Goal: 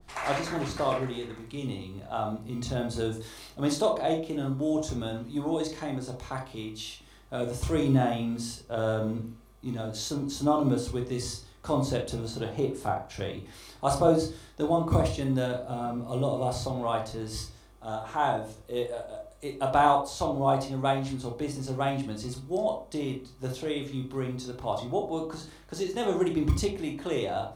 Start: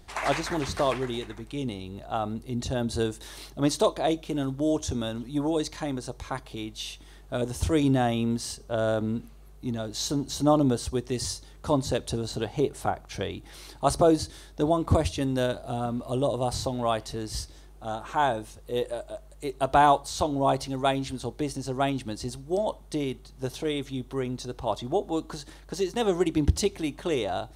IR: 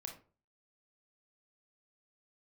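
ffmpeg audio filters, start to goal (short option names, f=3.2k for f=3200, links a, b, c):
-filter_complex "[0:a]acrossover=split=110[a][b];[a]acrusher=samples=39:mix=1:aa=0.000001[c];[c][b]amix=inputs=2:normalize=0[d];[1:a]atrim=start_sample=2205[e];[d][e]afir=irnorm=-1:irlink=0,adynamicequalizer=threshold=0.00562:dfrequency=1800:dqfactor=0.7:tfrequency=1800:tqfactor=0.7:attack=5:release=100:ratio=0.375:range=1.5:mode=cutabove:tftype=highshelf,volume=1.5dB"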